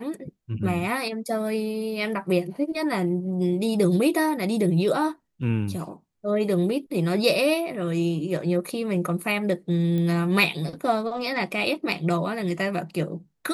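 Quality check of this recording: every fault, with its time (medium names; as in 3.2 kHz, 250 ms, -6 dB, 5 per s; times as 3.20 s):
9.98 s: pop -19 dBFS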